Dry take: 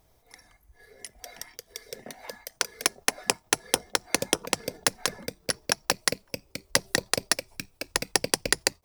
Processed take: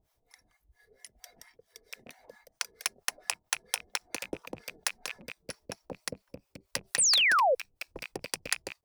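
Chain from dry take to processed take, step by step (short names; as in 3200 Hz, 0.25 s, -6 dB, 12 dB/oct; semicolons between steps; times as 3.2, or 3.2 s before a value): rattling part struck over -45 dBFS, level -16 dBFS; bit-crush 12-bit; harmonic tremolo 4.4 Hz, depth 100%, crossover 700 Hz; painted sound fall, 6.98–7.55, 470–10000 Hz -17 dBFS; gain -6.5 dB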